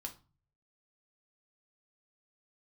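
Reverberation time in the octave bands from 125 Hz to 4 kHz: 0.80, 0.50, 0.30, 0.35, 0.25, 0.25 s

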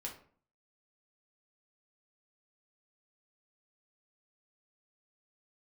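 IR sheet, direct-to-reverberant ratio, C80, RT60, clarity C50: -1.0 dB, 13.5 dB, 0.50 s, 9.0 dB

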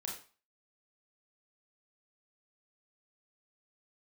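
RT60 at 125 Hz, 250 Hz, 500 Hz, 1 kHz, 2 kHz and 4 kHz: 0.35, 0.35, 0.35, 0.40, 0.35, 0.35 s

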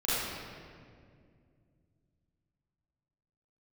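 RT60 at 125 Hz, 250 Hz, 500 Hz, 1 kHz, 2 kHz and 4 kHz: 3.7, 3.2, 2.5, 1.8, 1.7, 1.4 s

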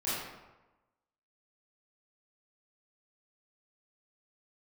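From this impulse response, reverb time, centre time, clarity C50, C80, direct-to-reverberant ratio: 1.1 s, 89 ms, -2.5 dB, 1.0 dB, -12.0 dB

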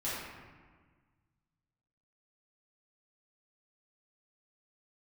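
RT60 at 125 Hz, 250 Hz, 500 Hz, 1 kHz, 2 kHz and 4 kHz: 2.3, 1.9, 1.5, 1.5, 1.4, 0.90 s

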